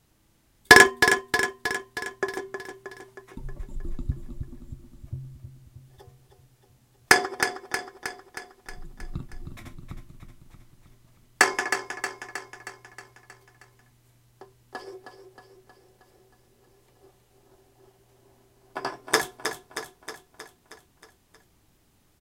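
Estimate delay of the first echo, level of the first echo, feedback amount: 315 ms, -8.0 dB, 59%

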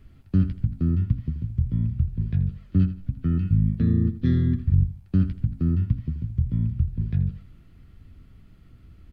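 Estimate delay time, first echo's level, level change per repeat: 81 ms, -13.0 dB, -11.5 dB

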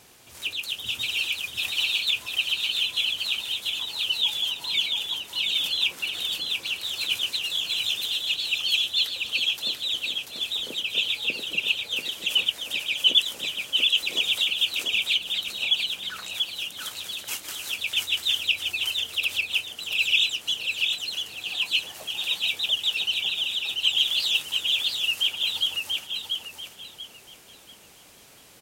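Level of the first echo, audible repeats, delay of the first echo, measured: -4.0 dB, 3, 688 ms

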